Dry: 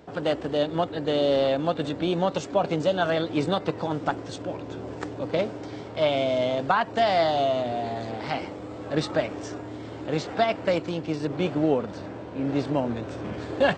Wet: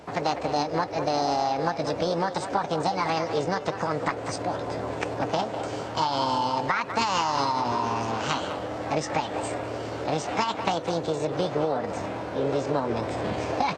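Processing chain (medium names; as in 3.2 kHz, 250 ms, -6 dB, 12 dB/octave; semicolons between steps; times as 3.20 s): compression, threshold -27 dBFS, peak gain reduction 10.5 dB; formant shift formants +6 st; speakerphone echo 200 ms, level -9 dB; trim +4.5 dB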